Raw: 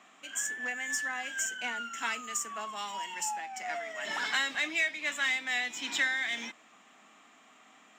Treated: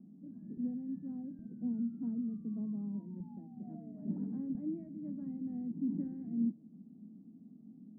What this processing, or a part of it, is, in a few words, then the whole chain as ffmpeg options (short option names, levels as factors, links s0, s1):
the neighbour's flat through the wall: -af "lowpass=f=240:w=0.5412,lowpass=f=240:w=1.3066,equalizer=f=180:t=o:w=0.94:g=7.5,volume=5.31"